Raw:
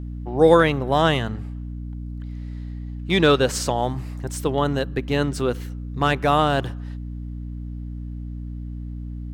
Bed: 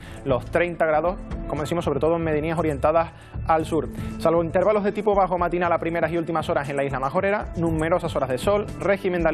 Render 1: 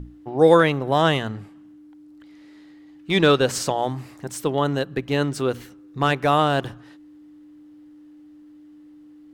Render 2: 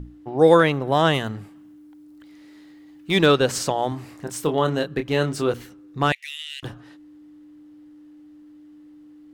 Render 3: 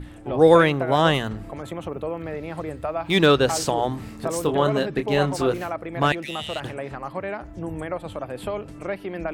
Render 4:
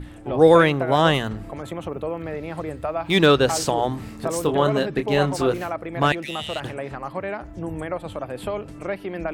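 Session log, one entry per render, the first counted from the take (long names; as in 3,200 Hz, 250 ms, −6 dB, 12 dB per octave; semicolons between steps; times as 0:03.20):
mains-hum notches 60/120/180/240 Hz
0:01.14–0:03.26: high-shelf EQ 9,700 Hz +11 dB; 0:03.89–0:05.54: double-tracking delay 26 ms −7 dB; 0:06.12–0:06.63: Chebyshev high-pass with heavy ripple 1,900 Hz, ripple 3 dB
mix in bed −8.5 dB
level +1 dB; brickwall limiter −3 dBFS, peak gain reduction 1.5 dB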